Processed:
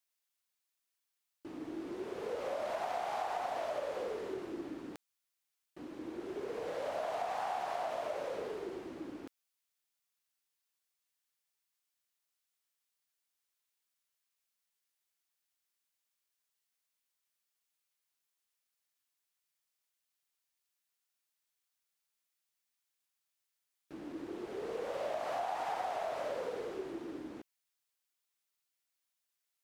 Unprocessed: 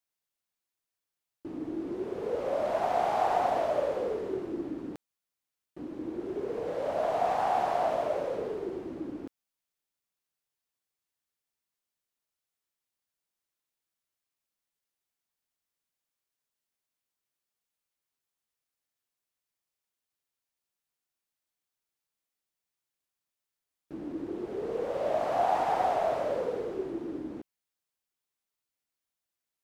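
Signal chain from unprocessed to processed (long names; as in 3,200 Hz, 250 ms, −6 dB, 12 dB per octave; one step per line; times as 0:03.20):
tilt shelving filter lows −6 dB, about 760 Hz
downward compressor 5 to 1, threshold −31 dBFS, peak gain reduction 8.5 dB
level −3 dB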